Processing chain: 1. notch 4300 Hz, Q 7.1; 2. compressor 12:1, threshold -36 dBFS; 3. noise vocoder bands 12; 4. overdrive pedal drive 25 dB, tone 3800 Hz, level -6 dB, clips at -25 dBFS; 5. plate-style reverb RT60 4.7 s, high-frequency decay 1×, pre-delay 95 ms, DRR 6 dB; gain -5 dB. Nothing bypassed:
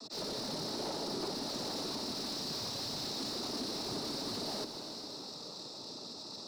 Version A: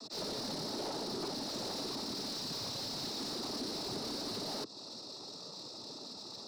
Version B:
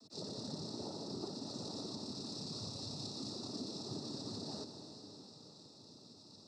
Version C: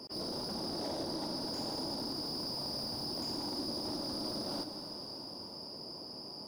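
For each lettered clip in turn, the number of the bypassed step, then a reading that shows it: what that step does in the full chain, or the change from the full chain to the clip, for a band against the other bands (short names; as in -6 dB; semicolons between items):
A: 5, crest factor change -2.5 dB; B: 4, crest factor change +3.5 dB; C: 3, 8 kHz band -5.5 dB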